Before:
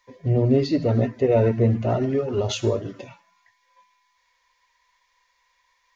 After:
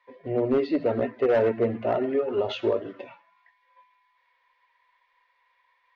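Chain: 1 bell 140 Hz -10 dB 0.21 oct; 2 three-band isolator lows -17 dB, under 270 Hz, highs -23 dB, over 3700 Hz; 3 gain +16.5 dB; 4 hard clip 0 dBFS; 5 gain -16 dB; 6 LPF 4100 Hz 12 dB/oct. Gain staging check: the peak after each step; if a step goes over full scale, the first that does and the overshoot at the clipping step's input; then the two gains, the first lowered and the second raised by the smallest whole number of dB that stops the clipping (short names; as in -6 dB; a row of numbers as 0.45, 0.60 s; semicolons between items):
-7.5, -9.0, +7.5, 0.0, -16.0, -15.5 dBFS; step 3, 7.5 dB; step 3 +8.5 dB, step 5 -8 dB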